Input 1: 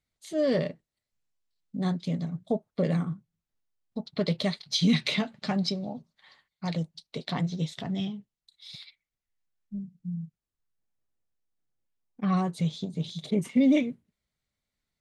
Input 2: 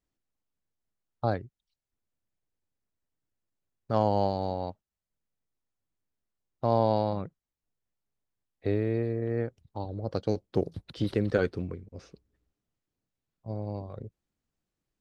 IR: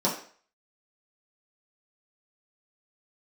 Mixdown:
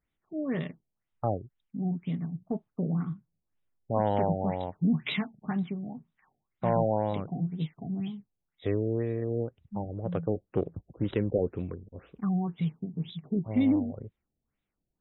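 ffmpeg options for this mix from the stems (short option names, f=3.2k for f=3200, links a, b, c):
-filter_complex "[0:a]equalizer=f=560:w=2.9:g=-14,volume=-1.5dB[a];[1:a]highshelf=f=2.6k:g=6,volume=-0.5dB[b];[a][b]amix=inputs=2:normalize=0,asoftclip=type=tanh:threshold=-13dB,afftfilt=real='re*lt(b*sr/1024,760*pow(4000/760,0.5+0.5*sin(2*PI*2*pts/sr)))':imag='im*lt(b*sr/1024,760*pow(4000/760,0.5+0.5*sin(2*PI*2*pts/sr)))':win_size=1024:overlap=0.75"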